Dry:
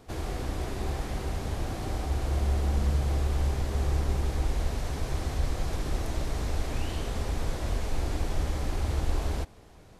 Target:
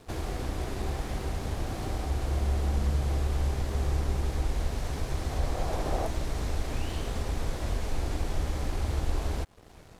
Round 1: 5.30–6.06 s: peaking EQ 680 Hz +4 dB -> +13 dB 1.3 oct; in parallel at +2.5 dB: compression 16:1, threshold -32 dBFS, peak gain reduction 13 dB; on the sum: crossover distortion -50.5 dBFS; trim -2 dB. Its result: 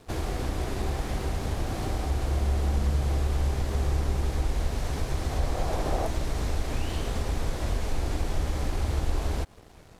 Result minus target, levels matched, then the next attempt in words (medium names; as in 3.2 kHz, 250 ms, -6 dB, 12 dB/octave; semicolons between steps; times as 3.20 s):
compression: peak gain reduction -8.5 dB
5.30–6.06 s: peaking EQ 680 Hz +4 dB -> +13 dB 1.3 oct; in parallel at +2.5 dB: compression 16:1, threshold -41 dBFS, peak gain reduction 21.5 dB; on the sum: crossover distortion -50.5 dBFS; trim -2 dB